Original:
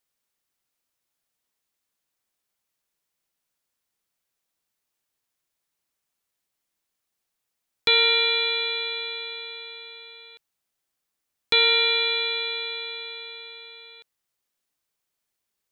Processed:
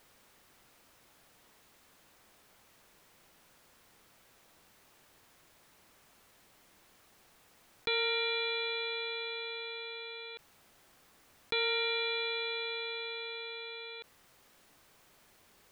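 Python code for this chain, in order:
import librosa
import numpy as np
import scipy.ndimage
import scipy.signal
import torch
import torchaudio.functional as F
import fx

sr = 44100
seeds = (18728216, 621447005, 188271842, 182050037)

y = fx.high_shelf(x, sr, hz=3000.0, db=-11.5)
y = fx.env_flatten(y, sr, amount_pct=50)
y = y * 10.0 ** (-8.5 / 20.0)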